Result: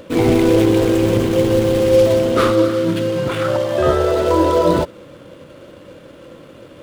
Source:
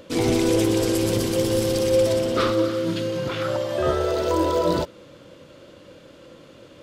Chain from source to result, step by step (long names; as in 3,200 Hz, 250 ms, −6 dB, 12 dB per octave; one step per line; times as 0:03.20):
running median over 9 samples
level +7 dB